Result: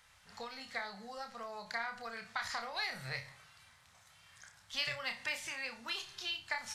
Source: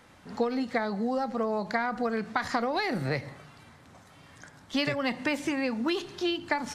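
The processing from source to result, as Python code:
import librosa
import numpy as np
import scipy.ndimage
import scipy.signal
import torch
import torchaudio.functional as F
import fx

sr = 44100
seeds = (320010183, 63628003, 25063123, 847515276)

y = fx.tone_stack(x, sr, knobs='10-0-10')
y = fx.room_flutter(y, sr, wall_m=5.2, rt60_s=0.25)
y = y * 10.0 ** (-2.0 / 20.0)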